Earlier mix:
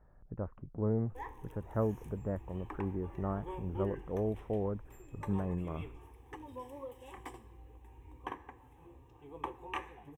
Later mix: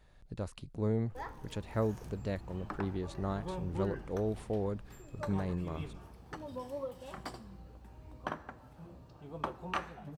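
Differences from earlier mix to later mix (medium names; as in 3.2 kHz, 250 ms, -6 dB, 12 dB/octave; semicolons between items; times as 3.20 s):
speech: remove inverse Chebyshev low-pass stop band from 3.7 kHz, stop band 50 dB; background: remove static phaser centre 930 Hz, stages 8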